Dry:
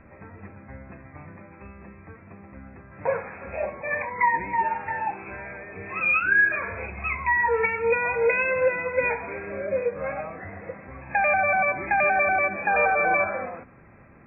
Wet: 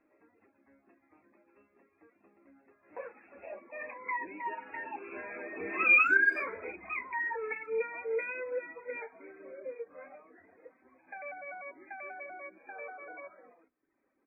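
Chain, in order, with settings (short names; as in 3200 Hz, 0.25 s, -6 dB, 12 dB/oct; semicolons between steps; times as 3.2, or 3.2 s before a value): Doppler pass-by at 5.84, 10 m/s, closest 4.5 m; resonant low shelf 200 Hz -14 dB, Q 3; speakerphone echo 0.13 s, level -27 dB; reverb removal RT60 0.75 s; flange 0.44 Hz, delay 6.4 ms, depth 2.5 ms, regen -49%; dynamic EQ 810 Hz, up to -6 dB, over -50 dBFS, Q 1.8; gain +4.5 dB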